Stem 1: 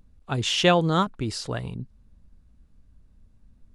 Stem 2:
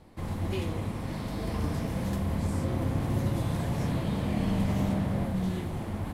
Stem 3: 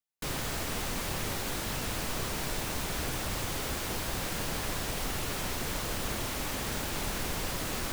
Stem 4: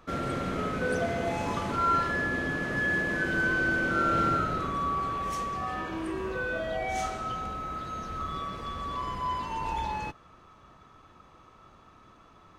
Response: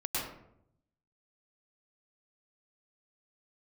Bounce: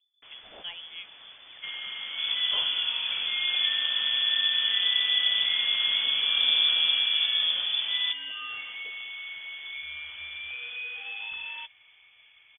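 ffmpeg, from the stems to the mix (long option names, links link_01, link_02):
-filter_complex "[0:a]acrossover=split=1300[link_01][link_02];[link_01]aeval=exprs='val(0)*(1-0.7/2+0.7/2*cos(2*PI*6.1*n/s))':channel_layout=same[link_03];[link_02]aeval=exprs='val(0)*(1-0.7/2-0.7/2*cos(2*PI*6.1*n/s))':channel_layout=same[link_04];[link_03][link_04]amix=inputs=2:normalize=0,volume=-18.5dB[link_05];[1:a]asubboost=boost=3:cutoff=62,adelay=2000,volume=3dB[link_06];[2:a]volume=-15.5dB[link_07];[3:a]acompressor=threshold=-30dB:ratio=6,adelay=1550,volume=-3dB[link_08];[link_05][link_06][link_07][link_08]amix=inputs=4:normalize=0,lowpass=frequency=3000:width_type=q:width=0.5098,lowpass=frequency=3000:width_type=q:width=0.6013,lowpass=frequency=3000:width_type=q:width=0.9,lowpass=frequency=3000:width_type=q:width=2.563,afreqshift=-3500"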